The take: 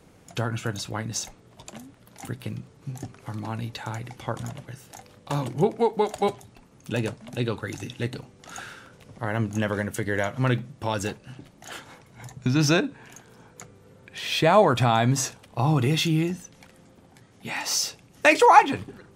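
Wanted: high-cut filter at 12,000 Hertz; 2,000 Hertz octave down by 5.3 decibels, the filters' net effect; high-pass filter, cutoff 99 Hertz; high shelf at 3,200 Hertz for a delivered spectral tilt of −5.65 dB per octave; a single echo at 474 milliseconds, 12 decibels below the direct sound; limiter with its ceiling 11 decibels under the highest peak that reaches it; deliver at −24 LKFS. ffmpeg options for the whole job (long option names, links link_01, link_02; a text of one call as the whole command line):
ffmpeg -i in.wav -af "highpass=99,lowpass=12000,equalizer=frequency=2000:width_type=o:gain=-4.5,highshelf=frequency=3200:gain=-7,alimiter=limit=-15dB:level=0:latency=1,aecho=1:1:474:0.251,volume=5.5dB" out.wav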